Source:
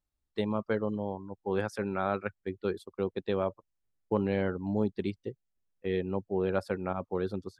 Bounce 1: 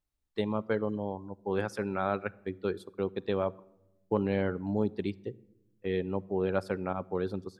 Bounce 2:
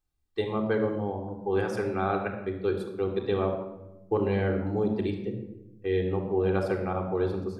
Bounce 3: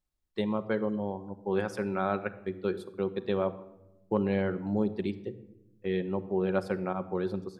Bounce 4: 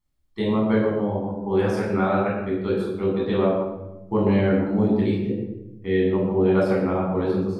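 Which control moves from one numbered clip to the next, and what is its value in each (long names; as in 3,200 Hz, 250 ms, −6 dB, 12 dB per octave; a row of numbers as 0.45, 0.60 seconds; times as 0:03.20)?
rectangular room, microphone at: 0.35, 3.7, 1, 11 metres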